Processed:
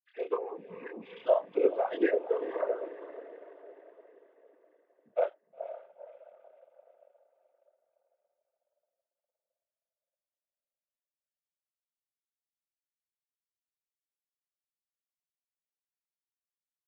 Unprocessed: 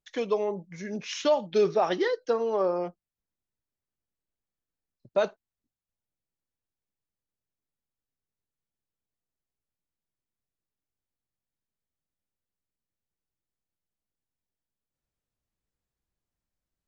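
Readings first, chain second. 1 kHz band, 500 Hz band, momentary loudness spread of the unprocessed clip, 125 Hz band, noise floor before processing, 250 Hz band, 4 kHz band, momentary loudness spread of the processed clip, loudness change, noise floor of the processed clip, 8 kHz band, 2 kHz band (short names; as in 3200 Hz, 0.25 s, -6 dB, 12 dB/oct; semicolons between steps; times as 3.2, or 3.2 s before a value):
-6.0 dB, -3.5 dB, 11 LU, under -15 dB, under -85 dBFS, -3.5 dB, under -15 dB, 21 LU, -4.0 dB, under -85 dBFS, n/a, -5.0 dB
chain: sine-wave speech; doubler 27 ms -4 dB; diffused feedback echo 0.484 s, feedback 46%, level -13 dB; noise vocoder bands 16; gain -4.5 dB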